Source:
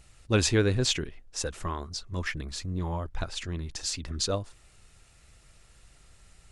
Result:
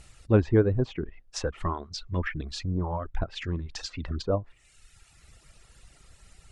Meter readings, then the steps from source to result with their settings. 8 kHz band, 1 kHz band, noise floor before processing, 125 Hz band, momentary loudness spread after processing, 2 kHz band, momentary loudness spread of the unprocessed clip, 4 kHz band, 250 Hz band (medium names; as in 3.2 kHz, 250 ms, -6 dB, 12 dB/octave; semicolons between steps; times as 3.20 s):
-11.0 dB, +2.0 dB, -58 dBFS, +2.5 dB, 12 LU, -3.0 dB, 12 LU, -7.5 dB, +3.0 dB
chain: low-pass that closes with the level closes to 940 Hz, closed at -26 dBFS; reverb removal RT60 1.1 s; trim +4.5 dB